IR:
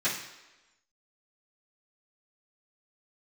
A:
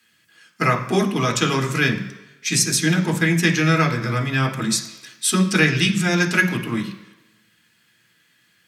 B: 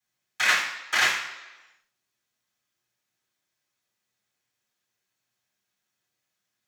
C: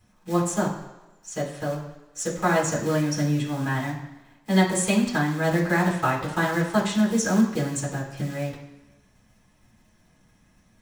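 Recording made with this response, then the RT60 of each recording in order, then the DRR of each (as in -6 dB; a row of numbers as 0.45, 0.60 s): B; 1.1, 1.1, 1.1 s; 2.5, -15.5, -6.0 dB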